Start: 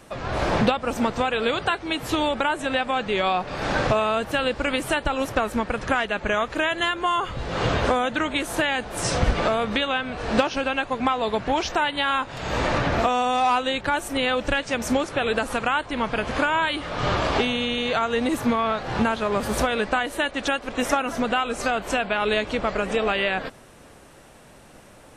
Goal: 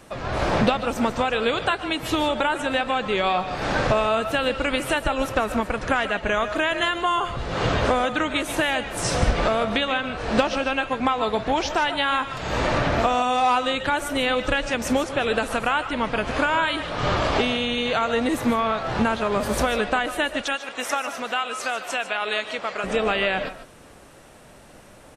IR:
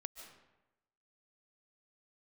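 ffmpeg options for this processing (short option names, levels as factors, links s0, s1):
-filter_complex "[0:a]asettb=1/sr,asplit=3[s0][s1][s2];[s0]atrim=end=20.414[s3];[s1]atrim=start=20.41:end=22.84,asetpts=PTS-STARTPTS,afade=t=in:d=0.004:c=qsin,afade=t=out:st=2.426:d=0.004:c=qsin,highpass=f=970:p=1[s4];[s2]atrim=start=22.836[s5];[s3][s4]acrossfade=d=0.004:c1=hsin:c2=qsin[s6];[s6][s5]acrossfade=d=0.004:c1=qsin:c2=hsin,asplit=2[s7][s8];[s8]adelay=110,highpass=300,lowpass=3400,asoftclip=type=hard:threshold=0.15,volume=0.1[s9];[s7][s9]amix=inputs=2:normalize=0[s10];[1:a]atrim=start_sample=2205,afade=t=out:st=0.21:d=0.01,atrim=end_sample=9702[s11];[s10][s11]afir=irnorm=-1:irlink=0,volume=1.78"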